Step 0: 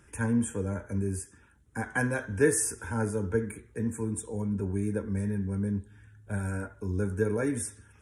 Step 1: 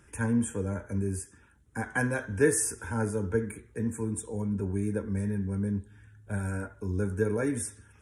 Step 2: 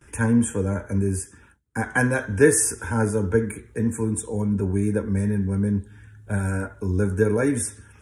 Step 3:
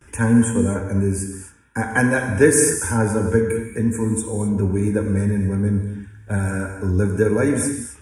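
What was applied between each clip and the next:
nothing audible
gate with hold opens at -50 dBFS; gain +7.5 dB
non-linear reverb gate 0.29 s flat, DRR 5 dB; gain +2.5 dB

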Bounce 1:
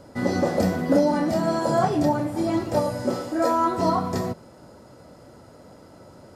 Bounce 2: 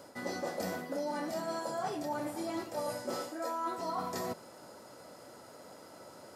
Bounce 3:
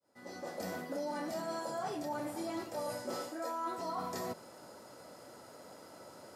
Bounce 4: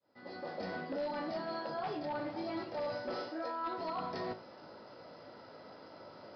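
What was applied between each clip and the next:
HPF 610 Hz 6 dB/oct; high shelf 9900 Hz +8 dB; reverse; compressor, threshold -34 dBFS, peak gain reduction 14 dB; reverse
opening faded in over 0.81 s; in parallel at -2 dB: limiter -31 dBFS, peak gain reduction 7 dB; on the sum: gain -6 dB
resonator 53 Hz, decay 0.26 s, harmonics all, mix 70%; wavefolder -36 dBFS; downsampling 11025 Hz; gain +5 dB

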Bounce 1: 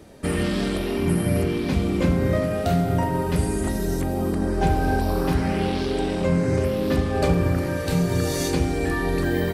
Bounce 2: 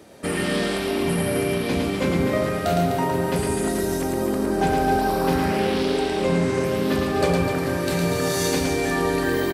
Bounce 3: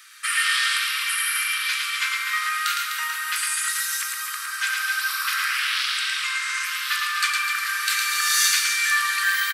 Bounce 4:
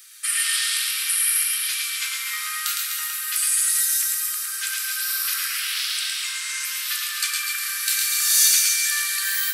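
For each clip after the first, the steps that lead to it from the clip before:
HPF 280 Hz 6 dB/oct; on a send: reverse bouncing-ball echo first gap 0.11 s, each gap 1.3×, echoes 5; on the sum: gain +2 dB
steep high-pass 1200 Hz 72 dB/oct; gain +8.5 dB
differentiator; split-band echo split 2600 Hz, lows 0.101 s, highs 0.133 s, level -7.5 dB; gain +4 dB

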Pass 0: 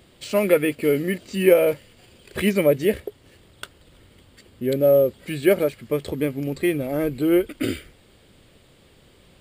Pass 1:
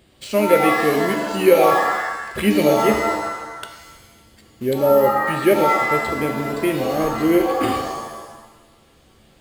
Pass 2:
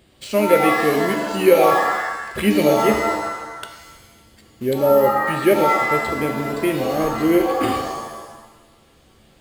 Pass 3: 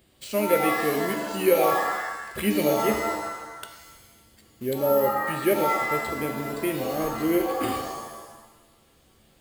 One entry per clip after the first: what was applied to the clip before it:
in parallel at -7 dB: requantised 6-bit, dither none; on the sum: shimmer reverb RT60 1.1 s, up +7 st, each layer -2 dB, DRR 5.5 dB; gain -2.5 dB
nothing audible
high shelf 9400 Hz +10.5 dB; gain -7 dB

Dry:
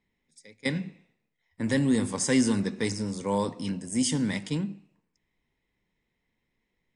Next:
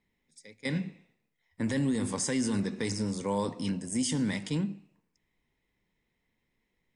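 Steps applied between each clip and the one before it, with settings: limiter -21.5 dBFS, peak gain reduction 8 dB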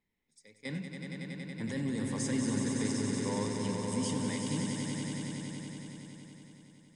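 swelling echo 93 ms, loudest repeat 5, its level -6.5 dB; gain -7 dB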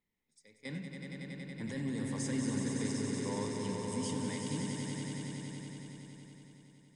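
reverb RT60 1.9 s, pre-delay 41 ms, DRR 10 dB; gain -3.5 dB

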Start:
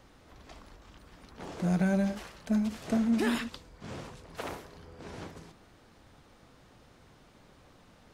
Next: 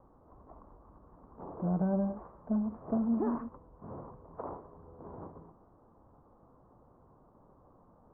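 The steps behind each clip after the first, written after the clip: elliptic low-pass 1100 Hz, stop band 70 dB; tilt shelf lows -3 dB, about 850 Hz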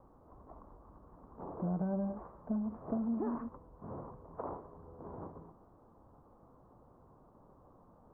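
compressor 3:1, threshold -33 dBFS, peak gain reduction 5.5 dB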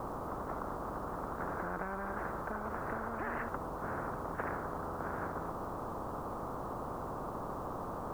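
spectral compressor 10:1; gain +2 dB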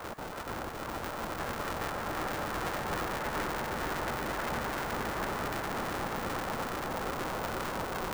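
random spectral dropouts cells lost 30%; swelling echo 0.118 s, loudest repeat 8, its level -7.5 dB; polarity switched at an audio rate 270 Hz; gain +1 dB

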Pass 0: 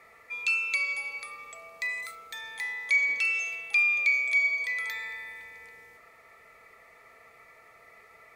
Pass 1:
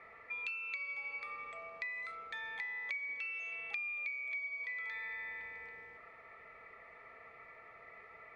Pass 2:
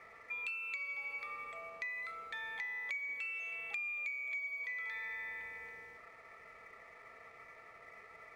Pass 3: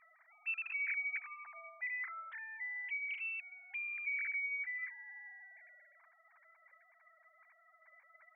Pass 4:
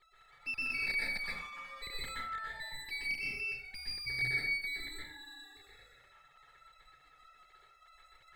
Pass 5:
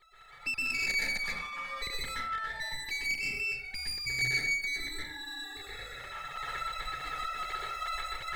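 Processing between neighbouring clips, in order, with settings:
Chebyshev low-pass 2200 Hz, order 2; compressor 8:1, threshold -39 dBFS, peak gain reduction 17 dB
sample leveller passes 1; gain -3.5 dB
sine-wave speech
minimum comb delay 2.3 ms; plate-style reverb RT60 0.61 s, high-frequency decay 0.55×, pre-delay 0.11 s, DRR -5.5 dB
self-modulated delay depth 0.069 ms; recorder AGC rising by 12 dB/s; gain +4.5 dB

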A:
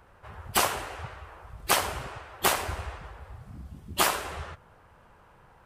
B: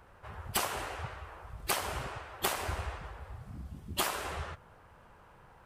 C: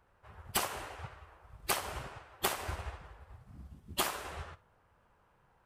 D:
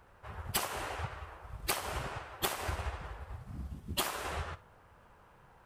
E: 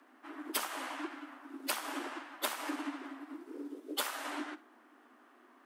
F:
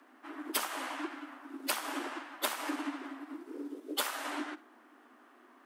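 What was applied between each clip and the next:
compressor 6:1, threshold -27 dBFS, peak gain reduction 9.5 dB; gain -1 dB
flutter echo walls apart 10 m, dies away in 0.26 s; upward expander 1.5:1, over -50 dBFS
compressor 2.5:1, threshold -43 dBFS, peak gain reduction 11.5 dB; gain +8.5 dB
frequency shift +220 Hz; gain -2 dB
ending taper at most 500 dB/s; gain +2 dB

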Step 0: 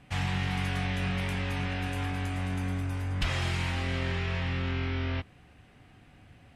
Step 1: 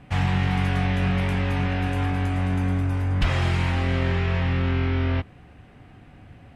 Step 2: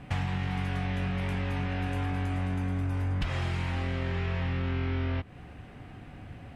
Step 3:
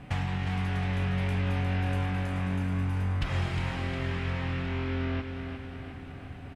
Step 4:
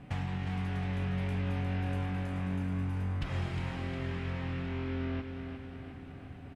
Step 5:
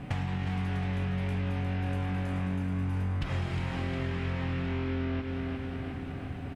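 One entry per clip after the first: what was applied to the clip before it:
high shelf 2400 Hz -10 dB; gain +8.5 dB
compressor 6:1, threshold -30 dBFS, peak gain reduction 13 dB; gain +2 dB
feedback echo 0.357 s, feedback 60%, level -7 dB
bell 240 Hz +4.5 dB 2.7 oct; gain -7 dB
compressor 3:1, threshold -39 dBFS, peak gain reduction 8 dB; gain +9 dB

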